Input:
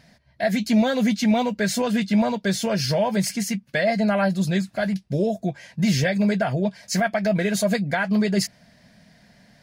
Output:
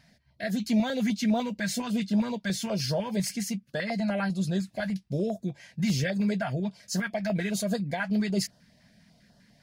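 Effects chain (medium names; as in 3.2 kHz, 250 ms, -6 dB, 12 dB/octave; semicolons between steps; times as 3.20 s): 4.01–4.50 s: low-pass 12 kHz 24 dB/octave; step-sequenced notch 10 Hz 420–2200 Hz; trim -5.5 dB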